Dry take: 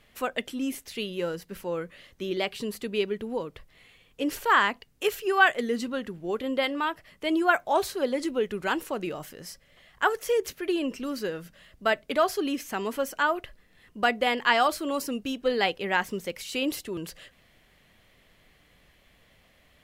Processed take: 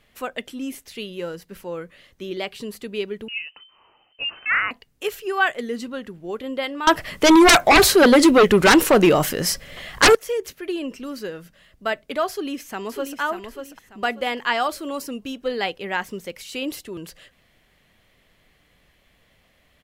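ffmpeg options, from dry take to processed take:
-filter_complex "[0:a]asettb=1/sr,asplit=3[a][b][c];[a]atrim=end=3.284[d];[b]atrim=start=3.28:end=4.71,asetpts=PTS-STARTPTS,afade=t=in:d=0.004:c=qsin,afade=t=out:st=1.426:d=0.004:c=qsin,lowpass=f=2.6k:t=q:w=0.5098,lowpass=f=2.6k:t=q:w=0.6013,lowpass=f=2.6k:t=q:w=0.9,lowpass=f=2.6k:t=q:w=2.563,afreqshift=-3100[e];[c]atrim=start=4.706[f];[d][e]acrossfade=d=0.004:c1=hsin:c2=qsin[g];[g][f]acrossfade=d=0.004:c1=qsin:c2=hsin,asettb=1/sr,asplit=3[h][i][j];[h]atrim=end=6.874[k];[i]atrim=start=6.87:end=10.15,asetpts=PTS-STARTPTS,afade=t=in:d=0.004:c=qsin,afade=t=out:st=3.276:d=0.004:c=qsin,aeval=exprs='0.398*sin(PI/2*6.31*val(0)/0.398)':c=same[l];[j]atrim=start=10.146[m];[k][l]acrossfade=d=0.004:c1=hsin:c2=qsin[n];[n][m]acrossfade=d=0.004:c1=qsin:c2=hsin,asplit=2[o][p];[p]afade=t=in:st=12.3:d=0.01,afade=t=out:st=13.19:d=0.01,aecho=0:1:590|1180|1770|2360:0.446684|0.134005|0.0402015|0.0120605[q];[o][q]amix=inputs=2:normalize=0"

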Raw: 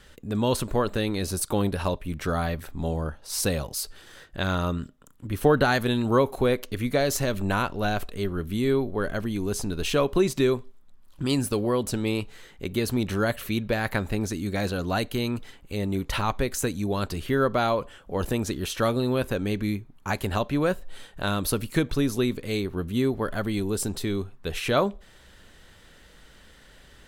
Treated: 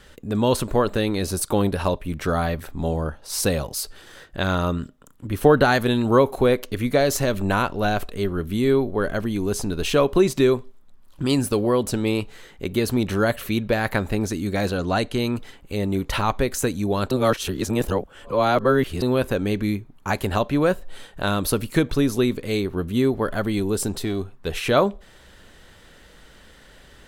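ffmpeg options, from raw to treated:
-filter_complex "[0:a]asettb=1/sr,asplit=3[a][b][c];[a]atrim=end=14.744[d];[b]atrim=start=14.74:end=15.19,asetpts=PTS-STARTPTS,afade=t=in:d=0.004:c=qsin,afade=t=out:st=0.446:d=0.004:c=qsin,lowpass=f=9.9k:w=0.5412,lowpass=f=9.9k:w=1.3066[e];[c]atrim=start=15.186[f];[d][e]acrossfade=d=0.004:c1=hsin:c2=qsin[g];[g][f]acrossfade=d=0.004:c1=qsin:c2=hsin,asettb=1/sr,asplit=3[h][i][j];[h]atrim=end=24.004[k];[i]atrim=start=24:end=24.47,asetpts=PTS-STARTPTS,afade=t=in:d=0.004:c=qsin,afade=t=out:st=0.466:d=0.004:c=qsin,aeval=exprs='(tanh(10*val(0)+0.35)-tanh(0.35))/10':c=same[l];[j]atrim=start=24.466[m];[k][l]acrossfade=d=0.004:c1=hsin:c2=qsin[n];[n][m]acrossfade=d=0.004:c1=qsin:c2=hsin,asplit=3[o][p][q];[o]atrim=end=17.112[r];[p]atrim=start=17.108:end=19.022,asetpts=PTS-STARTPTS,areverse[s];[q]atrim=start=19.018[t];[r][s]acrossfade=d=0.004:c1=hsin:c2=hsin[u];[u][t]acrossfade=d=0.004:c1=hsin:c2=hsin,equalizer=f=540:t=o:w=2.7:g=2.5,volume=2.5dB"

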